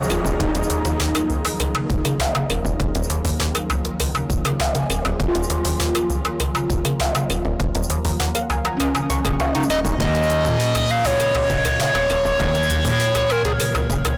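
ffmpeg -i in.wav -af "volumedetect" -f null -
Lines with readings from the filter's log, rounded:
mean_volume: -19.8 dB
max_volume: -16.6 dB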